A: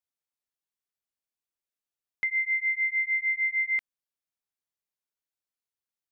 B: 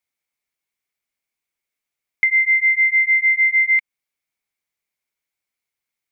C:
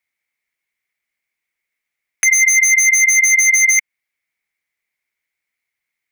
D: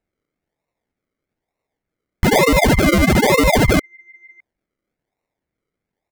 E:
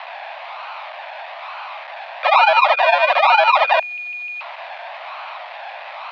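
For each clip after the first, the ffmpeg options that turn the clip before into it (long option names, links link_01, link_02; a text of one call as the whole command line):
ffmpeg -i in.wav -af "equalizer=frequency=2200:width_type=o:width=0.27:gain=13,acompressor=threshold=-22dB:ratio=2.5,volume=6.5dB" out.wav
ffmpeg -i in.wav -af "equalizer=frequency=2000:width=2.2:gain=11.5,aeval=exprs='0.473*(abs(mod(val(0)/0.473+3,4)-2)-1)':channel_layout=same" out.wav
ffmpeg -i in.wav -filter_complex "[0:a]acrossover=split=1600[link_01][link_02];[link_01]aecho=1:1:610:0.106[link_03];[link_02]acrusher=samples=39:mix=1:aa=0.000001:lfo=1:lforange=23.4:lforate=1.1[link_04];[link_03][link_04]amix=inputs=2:normalize=0" out.wav
ffmpeg -i in.wav -af "aeval=exprs='val(0)+0.5*0.0596*sgn(val(0))':channel_layout=same,highpass=frequency=270:width_type=q:width=0.5412,highpass=frequency=270:width_type=q:width=1.307,lowpass=frequency=3600:width_type=q:width=0.5176,lowpass=frequency=3600:width_type=q:width=0.7071,lowpass=frequency=3600:width_type=q:width=1.932,afreqshift=360,volume=1dB" out.wav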